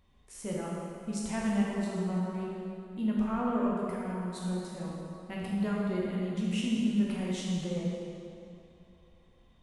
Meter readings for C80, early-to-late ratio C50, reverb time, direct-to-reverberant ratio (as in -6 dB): -0.5 dB, -2.0 dB, 2.7 s, -5.0 dB